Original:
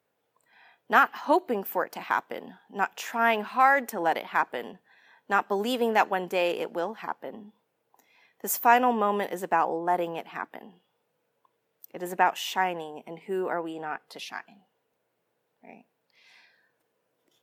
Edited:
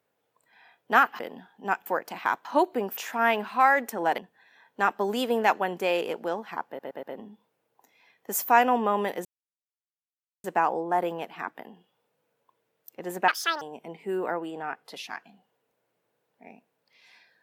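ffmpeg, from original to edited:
-filter_complex "[0:a]asplit=12[a][b][c][d][e][f][g][h][i][j][k][l];[a]atrim=end=1.192[m];[b]atrim=start=2.298:end=2.972[n];[c]atrim=start=1.708:end=2.302[o];[d]atrim=start=1.188:end=1.712[p];[e]atrim=start=2.968:end=4.182[q];[f]atrim=start=4.688:end=7.302[r];[g]atrim=start=7.178:end=7.302[s];[h]atrim=start=7.178:end=7.302[t];[i]atrim=start=7.178:end=9.4,asetpts=PTS-STARTPTS,afade=t=out:st=2.218:d=0.004:c=hsin,apad=pad_dur=1.19[u];[j]atrim=start=9.4:end=12.244,asetpts=PTS-STARTPTS,afade=t=in:d=0.004:c=hsin[v];[k]atrim=start=12.24:end=12.84,asetpts=PTS-STARTPTS,asetrate=78939,aresample=44100,atrim=end_sample=14782,asetpts=PTS-STARTPTS[w];[l]atrim=start=12.836[x];[m][n]acrossfade=d=0.004:c1=hsin:c2=hsin[y];[y][o]acrossfade=d=0.004:c1=hsin:c2=hsin[z];[z][p]acrossfade=d=0.004:c1=hsin:c2=hsin[aa];[aa][q]acrossfade=d=0.004:c1=hsin:c2=hsin[ab];[ab][r]acrossfade=d=0.004:c1=hsin:c2=hsin[ac];[ac][s]acrossfade=d=0.004:c1=hsin:c2=hsin[ad];[ad][t]acrossfade=d=0.004:c1=hsin:c2=hsin[ae];[u][v]concat=n=2:v=0:a=1[af];[ae][af]acrossfade=d=0.004:c1=hsin:c2=hsin[ag];[ag][w]acrossfade=d=0.004:c1=hsin:c2=hsin[ah];[ah][x]acrossfade=d=0.004:c1=hsin:c2=hsin"

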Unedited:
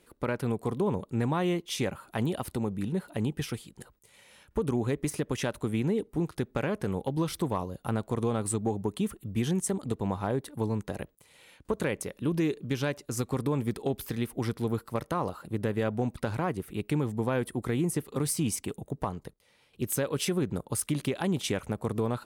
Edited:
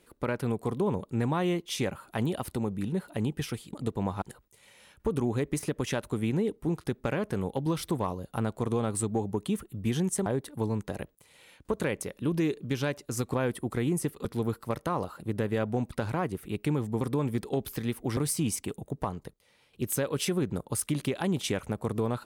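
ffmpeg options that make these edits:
-filter_complex "[0:a]asplit=8[a][b][c][d][e][f][g][h];[a]atrim=end=3.732[i];[b]atrim=start=9.768:end=10.262[j];[c]atrim=start=3.728:end=9.772[k];[d]atrim=start=10.258:end=13.342[l];[e]atrim=start=17.258:end=18.172[m];[f]atrim=start=14.498:end=17.262[n];[g]atrim=start=13.338:end=14.502[o];[h]atrim=start=18.168[p];[i][j]acrossfade=d=0.004:c1=hsin:c2=hsin[q];[q][k]acrossfade=d=0.004:c1=hsin:c2=hsin[r];[r][l]acrossfade=d=0.004:c1=hsin:c2=hsin[s];[s][m]acrossfade=d=0.004:c1=hsin:c2=hsin[t];[t][n]acrossfade=d=0.004:c1=hsin:c2=hsin[u];[u][o]acrossfade=d=0.004:c1=hsin:c2=hsin[v];[v][p]acrossfade=d=0.004:c1=hsin:c2=hsin"

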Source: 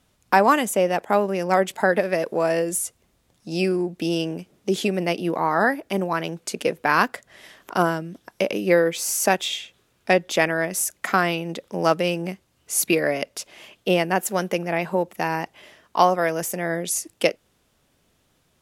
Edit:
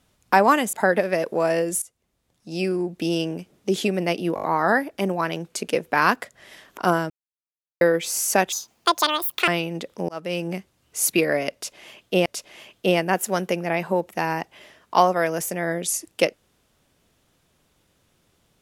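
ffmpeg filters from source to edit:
-filter_complex "[0:a]asplit=13[a][b][c][d][e][f][g][h][i][j][k][l][m];[a]atrim=end=0.732[n];[b]atrim=start=1.728:end=2.82,asetpts=PTS-STARTPTS,afade=t=out:st=1.088:d=0.004:c=hsin:silence=0.149624[o];[c]atrim=start=2.82:end=5.372,asetpts=PTS-STARTPTS,afade=t=in:d=1.17:silence=0.149624[p];[d]atrim=start=5.348:end=5.372[q];[e]atrim=start=5.348:end=5.372[r];[f]atrim=start=5.348:end=5.372[s];[g]atrim=start=5.348:end=8.02,asetpts=PTS-STARTPTS,afade=t=out:st=2.668:d=0.004:c=hsin[t];[h]atrim=start=8.02:end=8.73,asetpts=PTS-STARTPTS,volume=0[u];[i]atrim=start=8.73:end=9.444,asetpts=PTS-STARTPTS,afade=t=in:d=0.004:c=hsin[v];[j]atrim=start=9.44:end=11.22,asetpts=PTS-STARTPTS,asetrate=82026,aresample=44100,atrim=end_sample=42203,asetpts=PTS-STARTPTS[w];[k]atrim=start=11.216:end=11.83,asetpts=PTS-STARTPTS,afade=t=out:st=0.61:d=0.004:c=hsin[x];[l]atrim=start=11.83:end=14.002,asetpts=PTS-STARTPTS,afade=t=in:d=0.39[y];[m]atrim=start=13.278[z];[o][p]concat=n=2:v=0:a=1[aa];[n][aa]acrossfade=d=0.004:c1=hsin:c2=hsin[ab];[ab][q]acrossfade=d=0.004:c1=hsin:c2=hsin[ac];[ac][r]acrossfade=d=0.004:c1=hsin:c2=hsin[ad];[ad][s]acrossfade=d=0.004:c1=hsin:c2=hsin[ae];[t][u][v]concat=n=3:v=0:a=1[af];[ae][af]acrossfade=d=0.004:c1=hsin:c2=hsin[ag];[ag][w]acrossfade=d=0.004:c1=hsin:c2=hsin[ah];[x][y]concat=n=2:v=0:a=1[ai];[ah][ai]acrossfade=d=0.004:c1=hsin:c2=hsin[aj];[aj][z]acrossfade=d=0.004:c1=hsin:c2=hsin"

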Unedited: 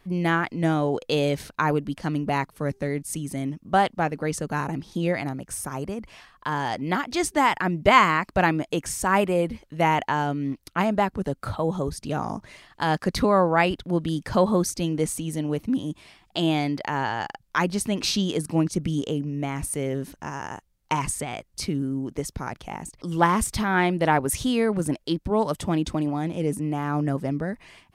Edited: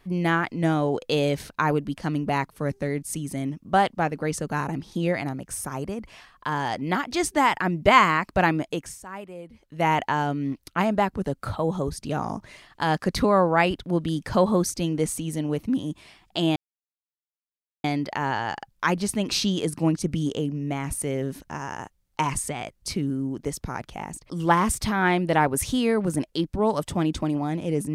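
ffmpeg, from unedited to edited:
-filter_complex "[0:a]asplit=4[a][b][c][d];[a]atrim=end=9.02,asetpts=PTS-STARTPTS,afade=t=out:st=8.62:d=0.4:silence=0.141254[e];[b]atrim=start=9.02:end=9.52,asetpts=PTS-STARTPTS,volume=-17dB[f];[c]atrim=start=9.52:end=16.56,asetpts=PTS-STARTPTS,afade=t=in:d=0.4:silence=0.141254,afade=t=out:st=7.036:d=0.004:c=hsin,apad=pad_dur=1.28[g];[d]atrim=start=16.56,asetpts=PTS-STARTPTS,afade=t=in:d=0.004:c=hsin[h];[e][f][g][h]concat=n=4:v=0:a=1"

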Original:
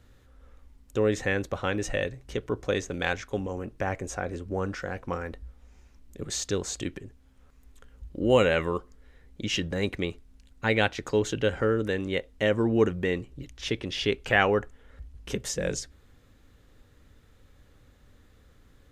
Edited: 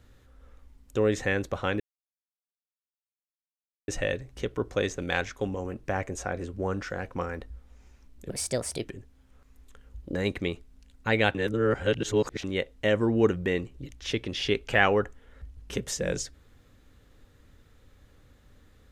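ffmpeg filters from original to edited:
-filter_complex "[0:a]asplit=7[a][b][c][d][e][f][g];[a]atrim=end=1.8,asetpts=PTS-STARTPTS,afade=t=out:st=1.796:d=0.004:c=hsin,apad=pad_dur=2.08[h];[b]atrim=start=1.8:end=6.224,asetpts=PTS-STARTPTS,afade=t=in:d=0.004:c=hsin[i];[c]atrim=start=6.22:end=6.92,asetpts=PTS-STARTPTS,asetrate=56448,aresample=44100,atrim=end_sample=24117,asetpts=PTS-STARTPTS[j];[d]atrim=start=6.916:end=8.222[k];[e]atrim=start=9.718:end=10.922[l];[f]atrim=start=10.918:end=12.012,asetpts=PTS-STARTPTS,areverse[m];[g]atrim=start=12.008[n];[h][i]concat=n=2:v=0:a=1[o];[o][j]acrossfade=d=0.004:c1=hsin:c2=hsin[p];[p][k]acrossfade=d=0.004:c1=hsin:c2=hsin[q];[q][l]acrossfade=d=0.004:c1=hsin:c2=hsin[r];[r][m]acrossfade=d=0.004:c1=hsin:c2=hsin[s];[s][n]acrossfade=d=0.004:c1=hsin:c2=hsin"

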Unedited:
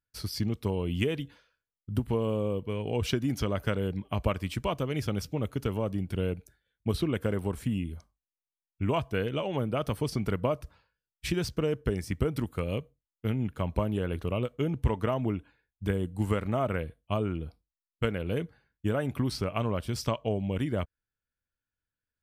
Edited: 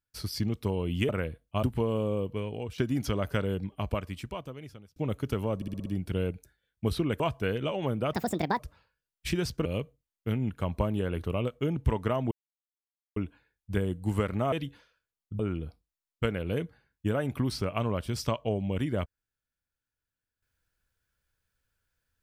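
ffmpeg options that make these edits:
-filter_complex "[0:a]asplit=17[a][b][c][d][e][f][g][h][i][j][k][l][m][n][o][p][q];[a]atrim=end=1.092[r];[b]atrim=start=16.648:end=17.192[s];[c]atrim=start=1.958:end=3.11,asetpts=PTS-STARTPTS,afade=t=out:st=0.742:d=0.41:silence=0.149624[t];[d]atrim=start=3.11:end=5.29,asetpts=PTS-STARTPTS,afade=t=in:d=0.004:c=hsin:silence=0.149624,afade=t=out:st=0.7:d=1.48[u];[e]atrim=start=5.29:end=5.952,asetpts=PTS-STARTPTS,afade=t=in:d=0.004:c=hsin[v];[f]atrim=start=5.888:end=5.952[w];[g]atrim=start=5.888:end=5.952[x];[h]atrim=start=5.888:end=5.952[y];[i]atrim=start=5.888:end=5.952[z];[j]atrim=start=5.888:end=7.232[aa];[k]atrim=start=8.908:end=9.844[ab];[l]atrim=start=9.84:end=10.58,asetpts=PTS-STARTPTS,asetrate=70560,aresample=44100,atrim=end_sample=20396,asetpts=PTS-STARTPTS[ac];[m]atrim=start=10.576:end=11.642[ad];[n]atrim=start=12.628:end=15.29,asetpts=PTS-STARTPTS,afade=t=out:st=2.658:d=0.004:c=hsin,apad=pad_dur=0.85[ae];[o]atrim=start=15.29:end=16.652,asetpts=PTS-STARTPTS,afade=t=in:d=0.004:c=hsin[af];[p]atrim=start=1.088:end=1.962[ag];[q]atrim=start=17.188[ah];[r][s]acrossfade=d=0.004:c1=hsin:c2=hsin[ai];[t][u][v]concat=n=3:v=0:a=1[aj];[ai][aj]acrossfade=d=0.004:c1=hsin:c2=hsin[ak];[ak][w]acrossfade=d=0.004:c1=hsin:c2=hsin[al];[al][x]acrossfade=d=0.004:c1=hsin:c2=hsin[am];[am][y]acrossfade=d=0.004:c1=hsin:c2=hsin[an];[an][z]acrossfade=d=0.004:c1=hsin:c2=hsin[ao];[ao][aa]acrossfade=d=0.004:c1=hsin:c2=hsin[ap];[ap][ab]acrossfade=d=0.004:c1=hsin:c2=hsin[aq];[aq][ac]acrossfade=d=0.004:c1=hsin:c2=hsin[ar];[ar][ad]acrossfade=d=0.004:c1=hsin:c2=hsin[as];[ae][af]concat=n=2:v=0:a=1[at];[as][at]acrossfade=d=0.004:c1=hsin:c2=hsin[au];[au][ag]acrossfade=d=0.004:c1=hsin:c2=hsin[av];[av][ah]acrossfade=d=0.004:c1=hsin:c2=hsin"

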